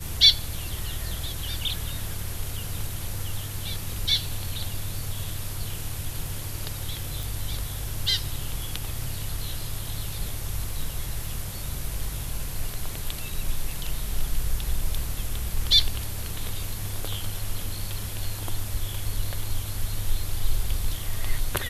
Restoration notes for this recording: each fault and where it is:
7.23 s: pop

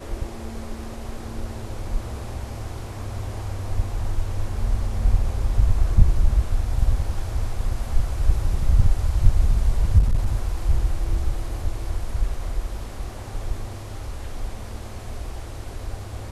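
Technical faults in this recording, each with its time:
9.98–10.48 s: clipped -14.5 dBFS

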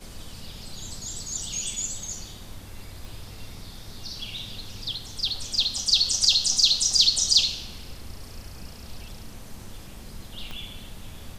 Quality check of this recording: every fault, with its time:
3.05 s: pop
10.51 s: pop -22 dBFS

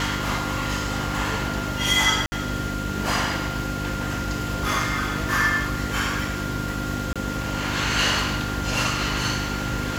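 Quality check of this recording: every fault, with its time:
hum 50 Hz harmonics 6 -30 dBFS
whine 1.4 kHz -32 dBFS
2.26–2.32 s: dropout 60 ms
7.13–7.16 s: dropout 26 ms

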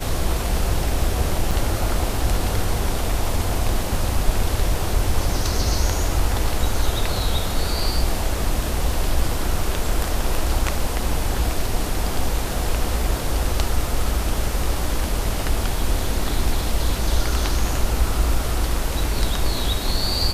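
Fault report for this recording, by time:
1.51 s: dropout 3.6 ms

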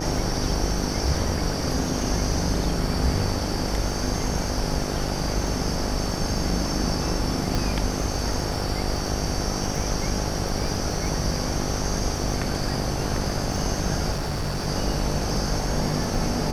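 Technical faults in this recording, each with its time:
buzz 50 Hz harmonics 17 -30 dBFS
crackle 16 per s -30 dBFS
7.55 s: pop
14.11–14.68 s: clipped -23 dBFS

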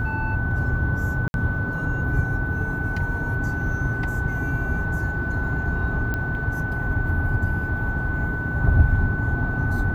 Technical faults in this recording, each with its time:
whine 1.5 kHz -28 dBFS
1.28–1.34 s: dropout 61 ms
6.14 s: pop -14 dBFS

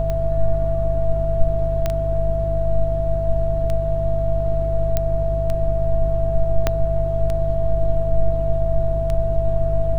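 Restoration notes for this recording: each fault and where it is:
hum 50 Hz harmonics 3 -23 dBFS
tick 33 1/3 rpm -13 dBFS
whine 660 Hz -22 dBFS
1.86 s: pop -8 dBFS
4.97 s: pop -6 dBFS
6.67 s: pop -4 dBFS

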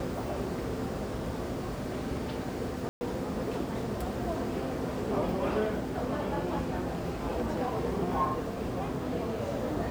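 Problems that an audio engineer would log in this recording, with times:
2.89–3.01 s: dropout 120 ms

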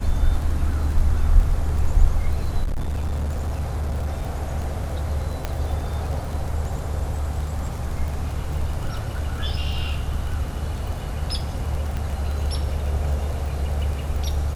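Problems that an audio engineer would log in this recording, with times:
crackle 20 per s -28 dBFS
2.63–4.22 s: clipped -21 dBFS
5.45 s: pop -11 dBFS
11.97 s: pop

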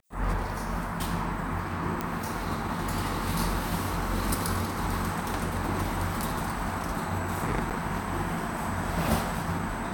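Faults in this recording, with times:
2.01 s: pop -15 dBFS
7.70–7.71 s: dropout 7.4 ms

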